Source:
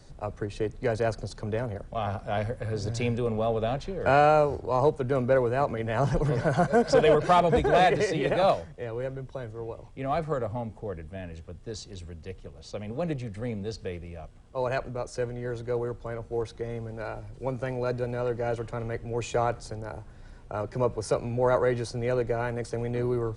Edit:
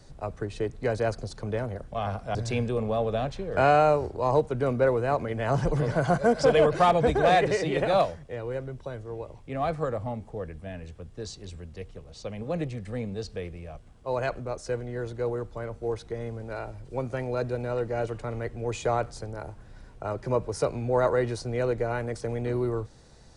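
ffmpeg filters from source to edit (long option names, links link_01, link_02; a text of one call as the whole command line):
ffmpeg -i in.wav -filter_complex "[0:a]asplit=2[link_01][link_02];[link_01]atrim=end=2.352[link_03];[link_02]atrim=start=2.838[link_04];[link_03][link_04]acrossfade=duration=0.004:curve1=hsin:curve2=hsin" out.wav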